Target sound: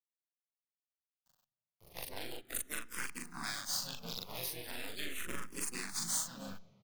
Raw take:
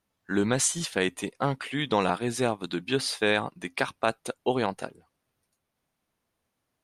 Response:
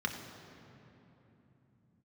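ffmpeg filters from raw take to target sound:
-filter_complex "[0:a]areverse,acrossover=split=160[link_01][link_02];[link_01]acompressor=mode=upward:threshold=-55dB:ratio=2.5[link_03];[link_03][link_02]amix=inputs=2:normalize=0,firequalizer=gain_entry='entry(180,0);entry(520,-7);entry(960,-1);entry(2300,2);entry(6200,10);entry(10000,13)':delay=0.05:min_phase=1,acompressor=threshold=-33dB:ratio=8,equalizer=frequency=630:width_type=o:width=2:gain=-9,acrusher=bits=6:dc=4:mix=0:aa=0.000001,asplit=3[link_04][link_05][link_06];[link_05]asetrate=22050,aresample=44100,atempo=2,volume=-15dB[link_07];[link_06]asetrate=58866,aresample=44100,atempo=0.749154,volume=-2dB[link_08];[link_04][link_07][link_08]amix=inputs=3:normalize=0,asplit=2[link_09][link_10];[link_10]adelay=41,volume=-2dB[link_11];[link_09][link_11]amix=inputs=2:normalize=0,asplit=2[link_12][link_13];[1:a]atrim=start_sample=2205[link_14];[link_13][link_14]afir=irnorm=-1:irlink=0,volume=-19.5dB[link_15];[link_12][link_15]amix=inputs=2:normalize=0,asplit=2[link_16][link_17];[link_17]afreqshift=-0.4[link_18];[link_16][link_18]amix=inputs=2:normalize=1,volume=-1dB"

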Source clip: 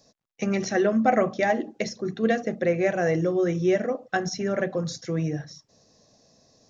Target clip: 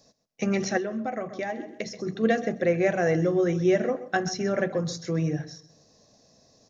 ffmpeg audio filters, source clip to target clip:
ffmpeg -i in.wav -filter_complex "[0:a]asplit=2[link_01][link_02];[link_02]aecho=0:1:129|258:0.158|0.0238[link_03];[link_01][link_03]amix=inputs=2:normalize=0,asettb=1/sr,asplit=3[link_04][link_05][link_06];[link_04]atrim=end=0.774[link_07];[link_05]atrim=start=0.77:end=2.07,asetpts=PTS-STARTPTS,afade=type=in:duration=0.004:curve=qsin,afade=type=out:start_time=1.296:duration=0.004:curve=qsin,acompressor=threshold=-29dB:ratio=5[link_08];[link_06]atrim=start=2.066[link_09];[link_07][link_08]acrossfade=duration=0.004:curve1=hsin:curve2=qsin[link_10];[link_10][link_09]acrossfade=duration=0.004:curve1=qsin:curve2=hsin,asplit=2[link_11][link_12];[link_12]adelay=153,lowpass=frequency=2000:poles=1,volume=-23dB,asplit=2[link_13][link_14];[link_14]adelay=153,lowpass=frequency=2000:poles=1,volume=0.41,asplit=2[link_15][link_16];[link_16]adelay=153,lowpass=frequency=2000:poles=1,volume=0.41[link_17];[link_13][link_15][link_17]amix=inputs=3:normalize=0[link_18];[link_11][link_18]amix=inputs=2:normalize=0" out.wav

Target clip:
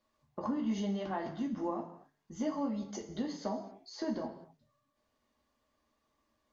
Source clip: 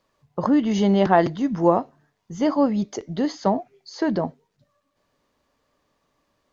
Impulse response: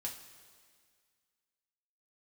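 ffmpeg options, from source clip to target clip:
-filter_complex "[0:a]acompressor=threshold=-26dB:ratio=3[link_01];[1:a]atrim=start_sample=2205,afade=type=out:start_time=0.38:duration=0.01,atrim=end_sample=17199,asetrate=52920,aresample=44100[link_02];[link_01][link_02]afir=irnorm=-1:irlink=0,volume=-5.5dB"

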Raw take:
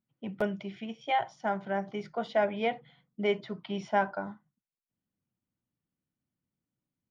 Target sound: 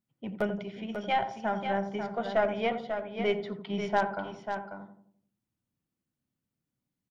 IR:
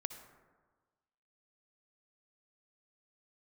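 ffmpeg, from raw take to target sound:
-filter_complex "[0:a]asplit=2[link_01][link_02];[link_02]adelay=86,lowpass=frequency=840:poles=1,volume=-7.5dB,asplit=2[link_03][link_04];[link_04]adelay=86,lowpass=frequency=840:poles=1,volume=0.5,asplit=2[link_05][link_06];[link_06]adelay=86,lowpass=frequency=840:poles=1,volume=0.5,asplit=2[link_07][link_08];[link_08]adelay=86,lowpass=frequency=840:poles=1,volume=0.5,asplit=2[link_09][link_10];[link_10]adelay=86,lowpass=frequency=840:poles=1,volume=0.5,asplit=2[link_11][link_12];[link_12]adelay=86,lowpass=frequency=840:poles=1,volume=0.5[link_13];[link_03][link_05][link_07][link_09][link_11][link_13]amix=inputs=6:normalize=0[link_14];[link_01][link_14]amix=inputs=2:normalize=0,aeval=exprs='0.178*(cos(1*acos(clip(val(0)/0.178,-1,1)))-cos(1*PI/2))+0.0224*(cos(4*acos(clip(val(0)/0.178,-1,1)))-cos(4*PI/2))+0.0112*(cos(6*acos(clip(val(0)/0.178,-1,1)))-cos(6*PI/2))+0.00224*(cos(8*acos(clip(val(0)/0.178,-1,1)))-cos(8*PI/2))':channel_layout=same,asplit=2[link_15][link_16];[link_16]aecho=0:1:542:0.422[link_17];[link_15][link_17]amix=inputs=2:normalize=0"

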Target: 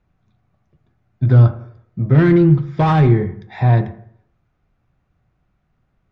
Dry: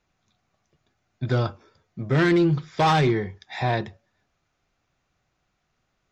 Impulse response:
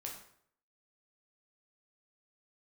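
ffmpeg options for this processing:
-filter_complex "[0:a]bass=frequency=250:gain=10,treble=frequency=4000:gain=-12,asplit=2[link_01][link_02];[1:a]atrim=start_sample=2205,lowpass=2000[link_03];[link_02][link_03]afir=irnorm=-1:irlink=0,volume=-1.5dB[link_04];[link_01][link_04]amix=inputs=2:normalize=0,volume=-1dB"

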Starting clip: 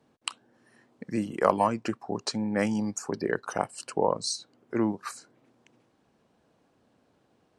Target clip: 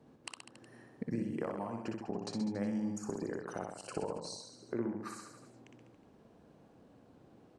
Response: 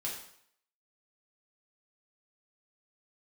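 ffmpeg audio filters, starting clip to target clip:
-af "acompressor=threshold=-40dB:ratio=10,tiltshelf=frequency=820:gain=5,aecho=1:1:60|126|198.6|278.5|366.3:0.631|0.398|0.251|0.158|0.1,volume=1.5dB"

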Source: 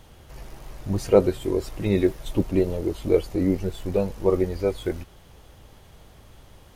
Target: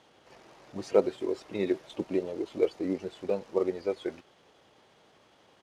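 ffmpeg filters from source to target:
ffmpeg -i in.wav -af "acrusher=bits=8:mode=log:mix=0:aa=0.000001,atempo=1.2,highpass=280,lowpass=5600,volume=-5dB" out.wav

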